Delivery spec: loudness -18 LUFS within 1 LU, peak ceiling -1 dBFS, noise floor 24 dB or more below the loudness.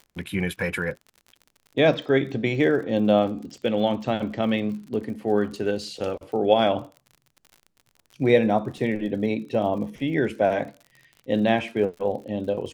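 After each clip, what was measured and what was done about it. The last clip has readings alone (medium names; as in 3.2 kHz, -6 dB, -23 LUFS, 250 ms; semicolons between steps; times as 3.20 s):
tick rate 47 per s; loudness -24.5 LUFS; peak level -4.0 dBFS; loudness target -18.0 LUFS
-> de-click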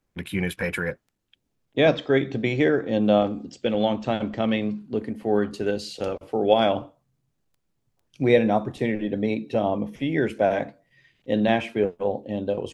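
tick rate 0.47 per s; loudness -24.5 LUFS; peak level -4.0 dBFS; loudness target -18.0 LUFS
-> trim +6.5 dB; peak limiter -1 dBFS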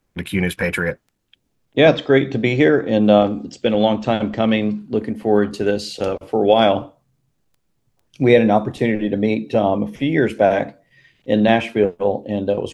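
loudness -18.0 LUFS; peak level -1.0 dBFS; noise floor -69 dBFS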